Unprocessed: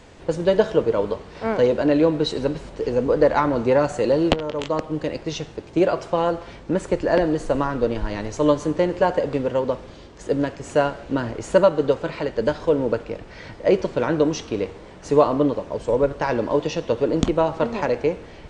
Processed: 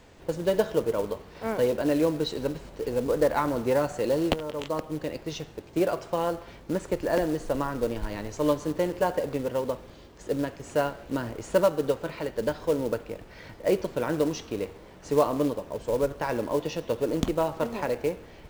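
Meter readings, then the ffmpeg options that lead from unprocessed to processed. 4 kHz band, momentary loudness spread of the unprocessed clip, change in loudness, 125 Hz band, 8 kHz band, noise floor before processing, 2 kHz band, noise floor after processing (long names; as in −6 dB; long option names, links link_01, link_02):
−5.5 dB, 10 LU, −6.5 dB, −6.5 dB, −2.5 dB, −42 dBFS, −6.5 dB, −49 dBFS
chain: -af "acrusher=bits=5:mode=log:mix=0:aa=0.000001,volume=-6.5dB"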